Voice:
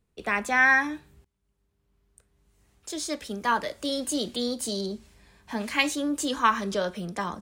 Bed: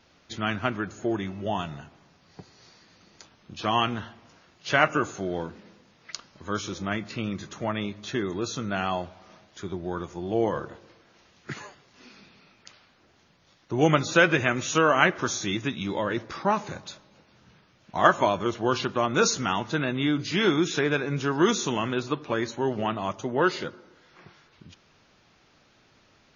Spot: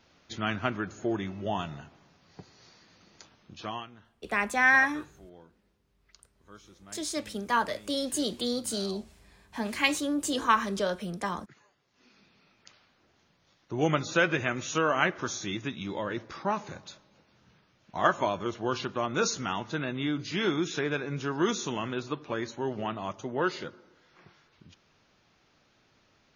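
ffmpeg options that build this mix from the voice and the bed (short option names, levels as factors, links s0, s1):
-filter_complex "[0:a]adelay=4050,volume=0.841[s0];[1:a]volume=4.73,afade=t=out:st=3.34:d=0.52:silence=0.112202,afade=t=in:st=11.66:d=1.01:silence=0.158489[s1];[s0][s1]amix=inputs=2:normalize=0"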